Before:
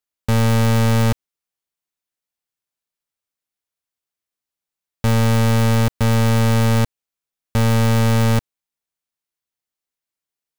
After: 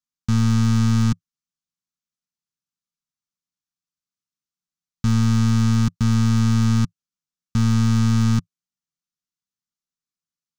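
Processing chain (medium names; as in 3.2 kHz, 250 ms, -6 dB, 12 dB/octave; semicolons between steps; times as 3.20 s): FFT filter 100 Hz 0 dB, 170 Hz +11 dB, 350 Hz -4 dB, 570 Hz -23 dB, 1.2 kHz +1 dB, 2 kHz -7 dB, 6.2 kHz +4 dB, 12 kHz -13 dB; trim -4.5 dB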